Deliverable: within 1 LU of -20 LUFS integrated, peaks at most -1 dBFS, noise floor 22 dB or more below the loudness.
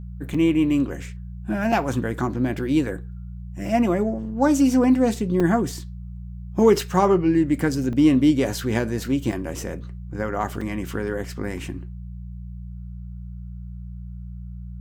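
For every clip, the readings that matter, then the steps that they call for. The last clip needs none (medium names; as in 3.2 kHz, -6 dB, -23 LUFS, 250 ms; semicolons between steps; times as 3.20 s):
dropouts 6; longest dropout 4.4 ms; hum 60 Hz; highest harmonic 180 Hz; hum level -33 dBFS; loudness -22.0 LUFS; peak level -5.0 dBFS; loudness target -20.0 LUFS
-> interpolate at 0.34/1.72/5.40/7.93/9.32/10.61 s, 4.4 ms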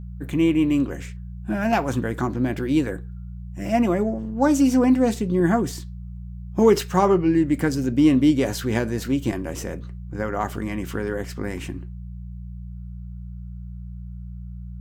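dropouts 0; hum 60 Hz; highest harmonic 180 Hz; hum level -33 dBFS
-> de-hum 60 Hz, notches 3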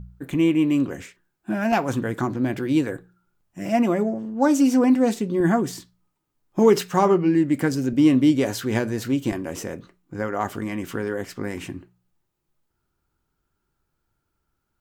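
hum not found; loudness -22.0 LUFS; peak level -4.5 dBFS; loudness target -20.0 LUFS
-> trim +2 dB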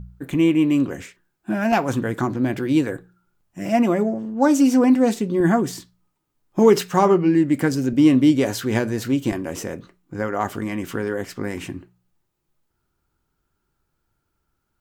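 loudness -20.0 LUFS; peak level -2.5 dBFS; noise floor -75 dBFS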